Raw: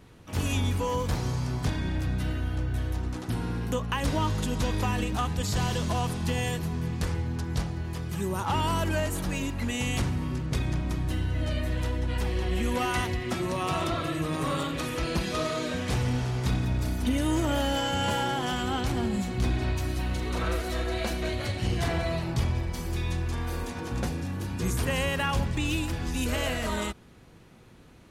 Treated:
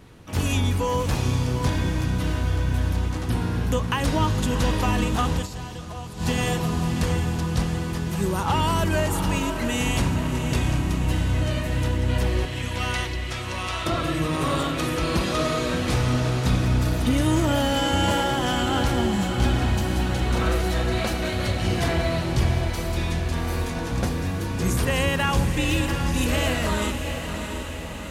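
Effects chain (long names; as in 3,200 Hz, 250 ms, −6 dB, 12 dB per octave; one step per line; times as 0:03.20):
0:12.45–0:13.86: resonant band-pass 3,600 Hz, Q 0.58
feedback delay with all-pass diffusion 707 ms, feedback 60%, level −7 dB
0:05.36–0:06.28: duck −12.5 dB, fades 0.12 s
level +4.5 dB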